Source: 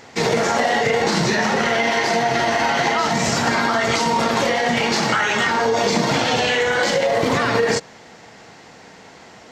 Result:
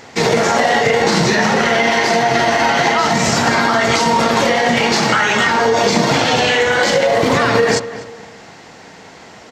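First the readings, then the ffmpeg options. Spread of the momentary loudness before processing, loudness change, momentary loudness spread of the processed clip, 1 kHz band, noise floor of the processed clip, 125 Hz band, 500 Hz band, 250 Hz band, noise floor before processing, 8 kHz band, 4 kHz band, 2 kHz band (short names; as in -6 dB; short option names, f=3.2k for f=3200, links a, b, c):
1 LU, +4.5 dB, 1 LU, +4.5 dB, -39 dBFS, +5.0 dB, +4.5 dB, +4.5 dB, -44 dBFS, +4.5 dB, +4.5 dB, +4.5 dB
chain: -filter_complex "[0:a]asplit=2[a][b];[b]adelay=248,lowpass=f=2.8k:p=1,volume=-14dB,asplit=2[c][d];[d]adelay=248,lowpass=f=2.8k:p=1,volume=0.36,asplit=2[e][f];[f]adelay=248,lowpass=f=2.8k:p=1,volume=0.36[g];[a][c][e][g]amix=inputs=4:normalize=0,volume=4.5dB"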